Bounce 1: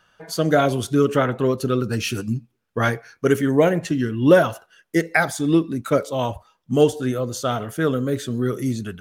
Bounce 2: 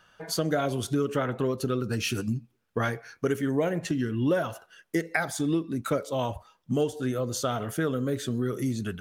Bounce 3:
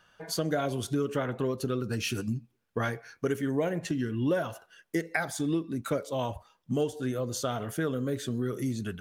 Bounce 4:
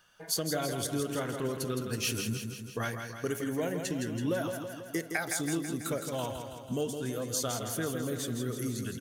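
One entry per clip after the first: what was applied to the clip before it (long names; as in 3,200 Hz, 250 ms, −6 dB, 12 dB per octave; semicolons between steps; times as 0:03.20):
downward compressor 3 to 1, threshold −26 dBFS, peak gain reduction 13.5 dB
notch filter 1,300 Hz, Q 24; level −2.5 dB
high-shelf EQ 4,400 Hz +12 dB; on a send: repeating echo 164 ms, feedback 60%, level −6.5 dB; on the sum: level −4.5 dB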